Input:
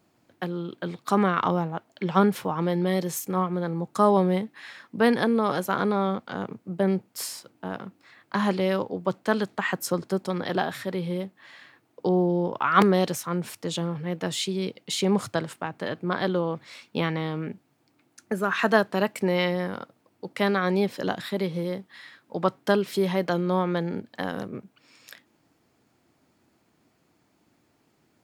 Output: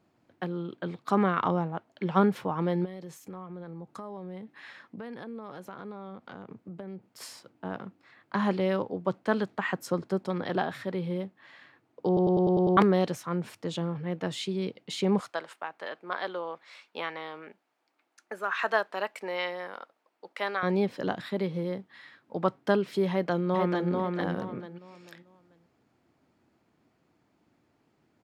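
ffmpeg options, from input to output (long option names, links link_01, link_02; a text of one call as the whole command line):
ffmpeg -i in.wav -filter_complex "[0:a]asplit=3[link_01][link_02][link_03];[link_01]afade=type=out:start_time=2.84:duration=0.02[link_04];[link_02]acompressor=threshold=-36dB:ratio=5:attack=3.2:release=140:knee=1:detection=peak,afade=type=in:start_time=2.84:duration=0.02,afade=type=out:start_time=7.2:duration=0.02[link_05];[link_03]afade=type=in:start_time=7.2:duration=0.02[link_06];[link_04][link_05][link_06]amix=inputs=3:normalize=0,asettb=1/sr,asplit=3[link_07][link_08][link_09];[link_07]atrim=end=15.204[link_10];[link_08]atrim=start=15.2:end=20.63,asetpts=PTS-STARTPTS,afade=type=in:duration=0.004:curve=qsin,afade=type=out:start_time=5.426:duration=0.004:curve=qsin,highpass=640[link_11];[link_09]atrim=start=20.626[link_12];[link_10][link_11]acrossfade=duration=0.004:curve1=hsin:curve2=qsin[link_13];[link_13][link_12]acrossfade=duration=0.004:curve1=qsin:curve2=hsin,asplit=2[link_14][link_15];[link_15]afade=type=in:start_time=23.1:duration=0.01,afade=type=out:start_time=23.9:duration=0.01,aecho=0:1:440|880|1320|1760:0.707946|0.212384|0.0637151|0.0191145[link_16];[link_14][link_16]amix=inputs=2:normalize=0,asplit=8[link_17][link_18][link_19][link_20][link_21][link_22][link_23][link_24];[link_17]atrim=end=12.172[link_25];[link_18]atrim=start=12.068:end=12.172[link_26];[link_19]atrim=start=12.068:end=12.172[link_27];[link_20]atrim=start=12.068:end=12.172[link_28];[link_21]atrim=start=12.068:end=12.172[link_29];[link_22]atrim=start=12.068:end=12.172[link_30];[link_23]atrim=start=12.068:end=12.172[link_31];[link_24]atrim=start=12.768[link_32];[link_25][link_26]acrossfade=duration=0.004:curve1=hsin:curve2=hsin[link_33];[link_33][link_27]acrossfade=duration=0.004:curve1=hsin:curve2=hsin[link_34];[link_34][link_28]acrossfade=duration=0.004:curve1=hsin:curve2=hsin[link_35];[link_35][link_29]acrossfade=duration=0.004:curve1=hsin:curve2=hsin[link_36];[link_36][link_30]acrossfade=duration=0.004:curve1=hsin:curve2=hsin[link_37];[link_37][link_31]acrossfade=duration=0.004:curve1=hsin:curve2=hsin[link_38];[link_38][link_32]acrossfade=duration=0.004:curve1=hsin:curve2=hsin,lowpass=frequency=2800:poles=1,volume=-2.5dB" out.wav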